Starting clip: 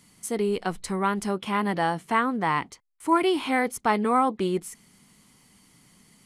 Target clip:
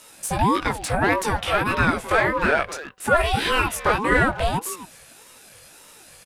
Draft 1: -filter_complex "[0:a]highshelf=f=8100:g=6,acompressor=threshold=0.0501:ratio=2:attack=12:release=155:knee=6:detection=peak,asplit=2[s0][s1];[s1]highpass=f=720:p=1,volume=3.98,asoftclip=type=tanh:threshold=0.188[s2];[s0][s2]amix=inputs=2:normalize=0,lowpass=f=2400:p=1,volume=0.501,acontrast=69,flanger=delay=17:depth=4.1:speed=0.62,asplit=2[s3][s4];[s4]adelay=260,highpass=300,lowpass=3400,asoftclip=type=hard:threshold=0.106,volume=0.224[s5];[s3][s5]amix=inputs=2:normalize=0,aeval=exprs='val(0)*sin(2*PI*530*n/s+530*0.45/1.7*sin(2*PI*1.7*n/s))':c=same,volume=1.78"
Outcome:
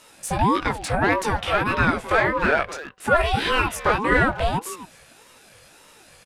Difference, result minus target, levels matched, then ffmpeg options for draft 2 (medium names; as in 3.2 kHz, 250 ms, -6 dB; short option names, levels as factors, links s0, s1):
8 kHz band -3.5 dB
-filter_complex "[0:a]highshelf=f=8100:g=17.5,acompressor=threshold=0.0501:ratio=2:attack=12:release=155:knee=6:detection=peak,asplit=2[s0][s1];[s1]highpass=f=720:p=1,volume=3.98,asoftclip=type=tanh:threshold=0.188[s2];[s0][s2]amix=inputs=2:normalize=0,lowpass=f=2400:p=1,volume=0.501,acontrast=69,flanger=delay=17:depth=4.1:speed=0.62,asplit=2[s3][s4];[s4]adelay=260,highpass=300,lowpass=3400,asoftclip=type=hard:threshold=0.106,volume=0.224[s5];[s3][s5]amix=inputs=2:normalize=0,aeval=exprs='val(0)*sin(2*PI*530*n/s+530*0.45/1.7*sin(2*PI*1.7*n/s))':c=same,volume=1.78"